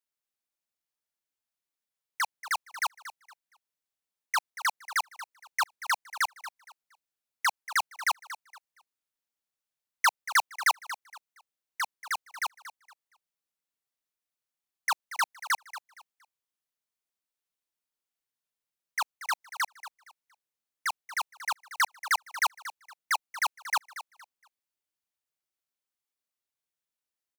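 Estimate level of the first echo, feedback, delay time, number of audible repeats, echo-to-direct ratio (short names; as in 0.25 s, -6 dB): -14.0 dB, 27%, 0.233 s, 2, -13.5 dB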